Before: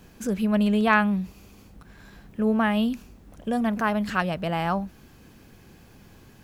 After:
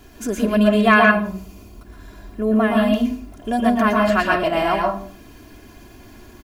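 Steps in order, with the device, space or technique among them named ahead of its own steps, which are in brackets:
microphone above a desk (comb filter 2.9 ms, depth 81%; convolution reverb RT60 0.45 s, pre-delay 111 ms, DRR −0.5 dB)
0:01.11–0:02.93: parametric band 2,300 Hz −4.5 dB 2.7 octaves
level +3 dB

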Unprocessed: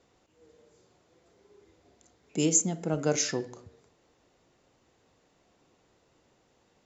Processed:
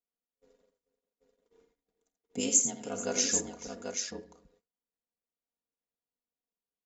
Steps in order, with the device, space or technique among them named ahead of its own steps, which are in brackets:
noise gate −58 dBFS, range −31 dB
0:02.40–0:03.32: spectral tilt +2 dB per octave
ring-modulated robot voice (ring modulation 47 Hz; comb filter 4.2 ms, depth 75%)
multi-tap delay 47/85/436/787 ms −16.5/−9/−18/−5.5 dB
level −4 dB

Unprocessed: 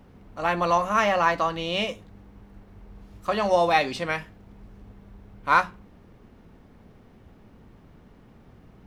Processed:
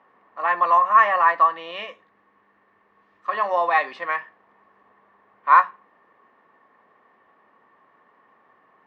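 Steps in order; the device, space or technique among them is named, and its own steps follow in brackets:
tin-can telephone (band-pass filter 620–2,100 Hz; hollow resonant body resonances 1,100/1,800 Hz, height 14 dB, ringing for 30 ms)
0:01.71–0:03.33: parametric band 810 Hz −6 dB 1.5 octaves

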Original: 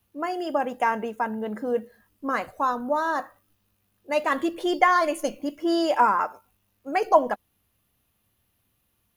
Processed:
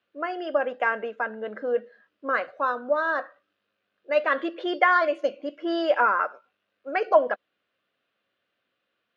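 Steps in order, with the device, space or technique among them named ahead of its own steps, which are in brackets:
0:05.07–0:05.59: dynamic equaliser 1,600 Hz, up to −5 dB, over −44 dBFS, Q 1.2
phone earpiece (loudspeaker in its box 390–3,900 Hz, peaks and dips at 550 Hz +6 dB, 880 Hz −10 dB, 1,500 Hz +7 dB)

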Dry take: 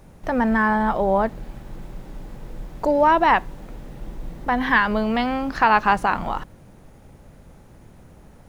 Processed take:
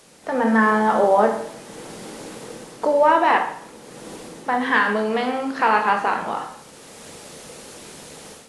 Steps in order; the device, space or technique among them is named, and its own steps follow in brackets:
filmed off a television (band-pass filter 270–6,100 Hz; parametric band 460 Hz +7 dB 0.29 octaves; convolution reverb RT60 0.65 s, pre-delay 14 ms, DRR 3 dB; white noise bed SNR 26 dB; automatic gain control gain up to 10.5 dB; level −3 dB; AAC 48 kbit/s 24,000 Hz)

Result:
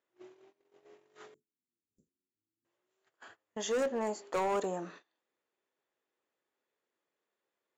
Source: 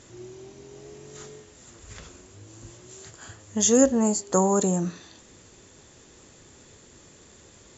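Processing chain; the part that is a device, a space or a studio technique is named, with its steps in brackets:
walkie-talkie (band-pass filter 490–2,600 Hz; hard clipping −24.5 dBFS, distortion −8 dB; noise gate −48 dBFS, range −26 dB)
0:01.34–0:02.65: inverse Chebyshev band-stop filter 900–3,000 Hz, stop band 70 dB
level −3 dB

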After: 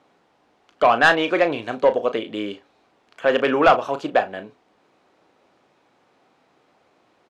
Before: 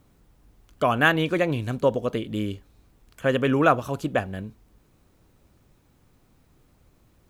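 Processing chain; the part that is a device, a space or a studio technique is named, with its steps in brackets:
intercom (band-pass filter 400–4,000 Hz; parametric band 750 Hz +4.5 dB 0.51 octaves; soft clipping −12.5 dBFS, distortion −13 dB; double-tracking delay 35 ms −11 dB)
level +6.5 dB

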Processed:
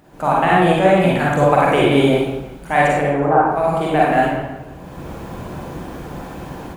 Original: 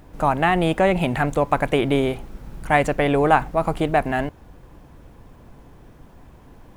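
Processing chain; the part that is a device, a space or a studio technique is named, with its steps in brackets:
0:03.01–0:03.46: low-pass filter 1,400 Hz 24 dB per octave
far laptop microphone (convolution reverb RT60 0.90 s, pre-delay 37 ms, DRR −5 dB; high-pass filter 140 Hz 6 dB per octave; automatic gain control gain up to 14 dB)
hum removal 45.18 Hz, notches 3
feedback echo with a swinging delay time 164 ms, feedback 42%, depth 123 cents, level −17 dB
level −1 dB

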